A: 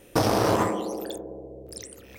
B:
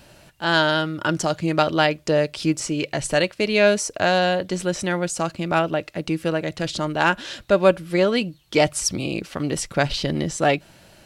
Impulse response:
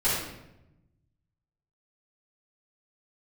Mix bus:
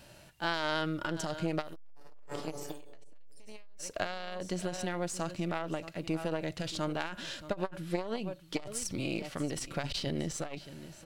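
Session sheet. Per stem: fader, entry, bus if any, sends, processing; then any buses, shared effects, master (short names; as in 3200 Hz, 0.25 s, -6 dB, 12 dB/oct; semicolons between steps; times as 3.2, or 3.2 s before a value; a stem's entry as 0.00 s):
0.0 dB, 1.60 s, send -5 dB, no echo send, compressor 2:1, threshold -33 dBFS, peak gain reduction 9 dB; robotiser 144 Hz
-2.5 dB, 0.00 s, no send, echo send -17.5 dB, half-wave gain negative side -3 dB; harmonic-percussive split percussive -7 dB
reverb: on, RT60 0.90 s, pre-delay 3 ms
echo: echo 0.625 s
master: high shelf 3800 Hz +2 dB; core saturation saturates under 750 Hz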